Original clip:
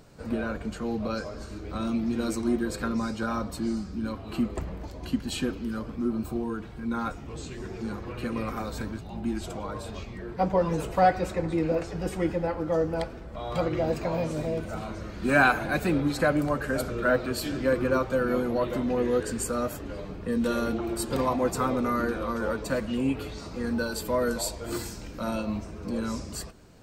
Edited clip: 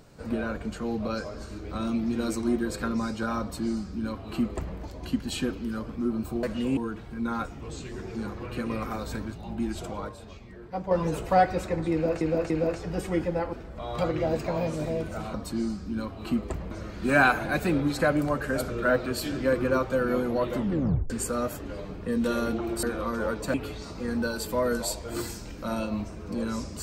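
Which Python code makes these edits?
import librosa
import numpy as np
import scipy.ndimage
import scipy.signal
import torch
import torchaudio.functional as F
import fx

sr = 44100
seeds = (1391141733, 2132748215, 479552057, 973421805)

y = fx.edit(x, sr, fx.duplicate(start_s=3.41, length_s=1.37, to_s=14.91),
    fx.clip_gain(start_s=9.75, length_s=0.82, db=-7.5),
    fx.repeat(start_s=11.58, length_s=0.29, count=3),
    fx.cut(start_s=12.61, length_s=0.49),
    fx.tape_stop(start_s=18.78, length_s=0.52),
    fx.cut(start_s=21.03, length_s=1.02),
    fx.move(start_s=22.76, length_s=0.34, to_s=6.43), tone=tone)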